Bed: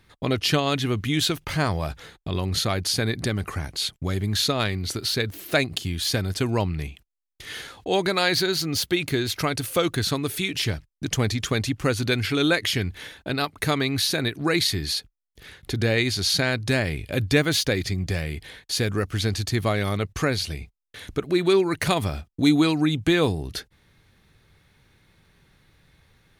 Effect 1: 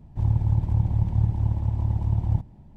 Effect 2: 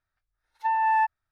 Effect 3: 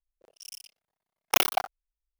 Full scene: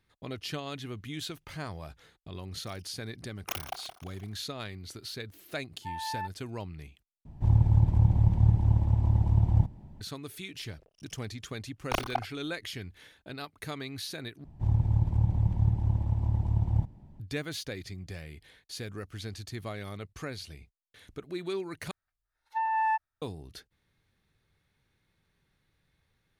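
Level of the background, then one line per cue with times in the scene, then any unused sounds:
bed −15 dB
0:02.15: mix in 3 −14.5 dB + feedback echo with a swinging delay time 171 ms, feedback 56%, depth 91 cents, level −11 dB
0:05.21: mix in 2 −14 dB
0:07.25: overwrite with 1
0:10.58: mix in 3 −6.5 dB + RIAA equalisation playback
0:14.44: overwrite with 1 −3.5 dB
0:21.91: overwrite with 2 −5 dB

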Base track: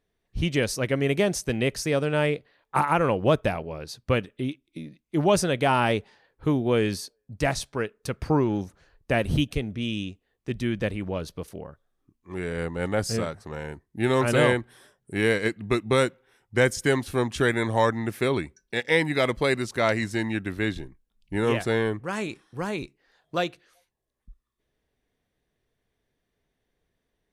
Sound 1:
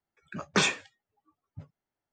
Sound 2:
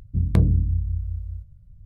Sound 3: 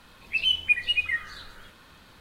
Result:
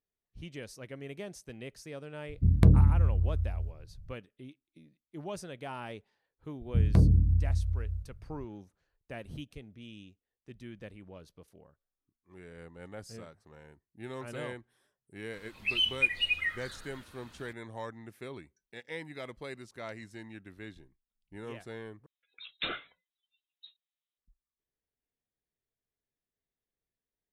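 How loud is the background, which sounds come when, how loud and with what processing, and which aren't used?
base track −19 dB
0:02.28: mix in 2 −1.5 dB
0:06.60: mix in 2 −2 dB + soft clipping −10 dBFS
0:15.33: mix in 3 −4.5 dB
0:22.06: overwrite with 1 −10.5 dB + voice inversion scrambler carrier 3,900 Hz

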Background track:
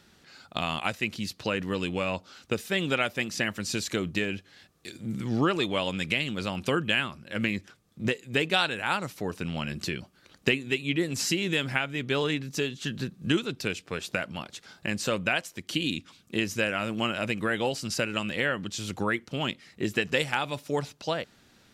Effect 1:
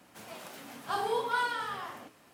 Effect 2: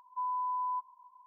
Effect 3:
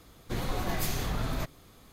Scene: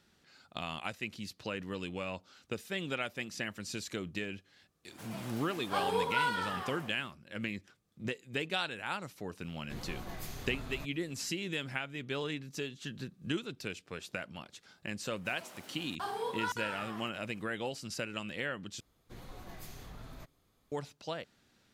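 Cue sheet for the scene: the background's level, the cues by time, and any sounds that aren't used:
background track −9.5 dB
0:04.83: mix in 1 −1 dB, fades 0.10 s
0:09.40: mix in 3 −12 dB
0:15.10: mix in 1 −6 dB + regular buffer underruns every 0.57 s, samples 2,048, zero, from 0:00.85
0:18.80: overwrite with 3 −17 dB
not used: 2

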